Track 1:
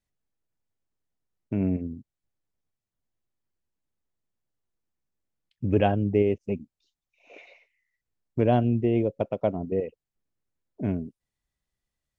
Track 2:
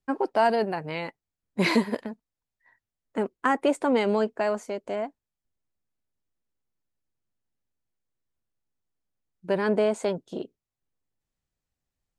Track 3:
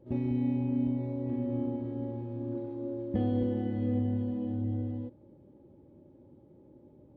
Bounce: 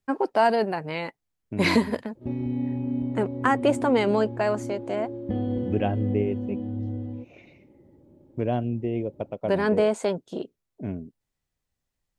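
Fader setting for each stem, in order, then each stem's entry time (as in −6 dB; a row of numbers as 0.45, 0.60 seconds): −4.5, +1.5, +1.5 decibels; 0.00, 0.00, 2.15 seconds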